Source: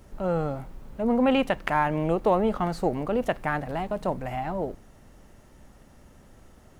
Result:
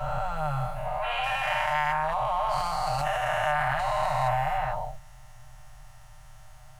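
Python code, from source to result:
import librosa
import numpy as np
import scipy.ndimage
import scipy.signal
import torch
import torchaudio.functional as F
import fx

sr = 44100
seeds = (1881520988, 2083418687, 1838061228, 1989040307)

y = fx.spec_dilate(x, sr, span_ms=480)
y = y + 0.73 * np.pad(y, (int(6.6 * sr / 1000.0), 0))[:len(y)]
y = fx.rider(y, sr, range_db=4, speed_s=0.5)
y = scipy.signal.sosfilt(scipy.signal.ellip(3, 1.0, 40, [130.0, 690.0], 'bandstop', fs=sr, output='sos'), y)
y = fx.transient(y, sr, attack_db=1, sustain_db=8, at=(1.89, 4.06))
y = y * 10.0 ** (-7.0 / 20.0)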